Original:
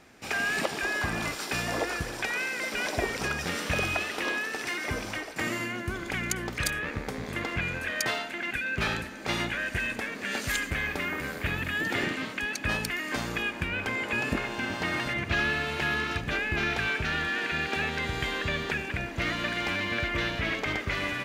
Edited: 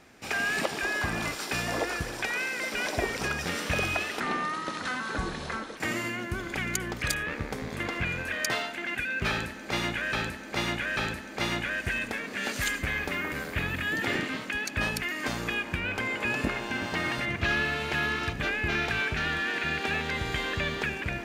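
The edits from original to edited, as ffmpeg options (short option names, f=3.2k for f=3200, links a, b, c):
-filter_complex "[0:a]asplit=5[a][b][c][d][e];[a]atrim=end=4.204[f];[b]atrim=start=4.2:end=5.33,asetpts=PTS-STARTPTS,asetrate=31752,aresample=44100,atrim=end_sample=69212,asetpts=PTS-STARTPTS[g];[c]atrim=start=5.326:end=9.692[h];[d]atrim=start=8.848:end=9.692[i];[e]atrim=start=8.848[j];[f][g]acrossfade=d=0.004:c1=hsin:c2=hsin[k];[k][h]acrossfade=d=0.004:c1=hsin:c2=hsin[l];[l][i]acrossfade=d=0.004:c1=hsin:c2=hsin[m];[m][j]acrossfade=d=0.004:c1=hsin:c2=hsin"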